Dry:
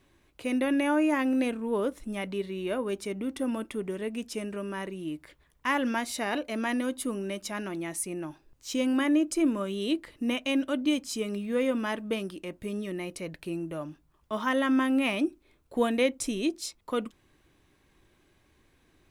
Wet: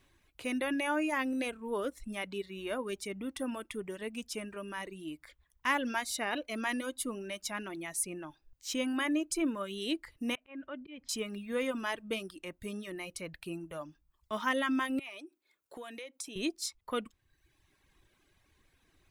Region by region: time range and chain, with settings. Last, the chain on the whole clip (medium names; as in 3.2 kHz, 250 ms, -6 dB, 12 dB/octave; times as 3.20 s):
10.35–11.09 s: low-pass 2.7 kHz 24 dB/octave + slow attack 165 ms + compression 1.5:1, threshold -45 dBFS
14.99–16.36 s: high-pass 320 Hz + compression, threshold -37 dBFS
whole clip: reverb removal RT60 0.9 s; peaking EQ 310 Hz -6 dB 3 oct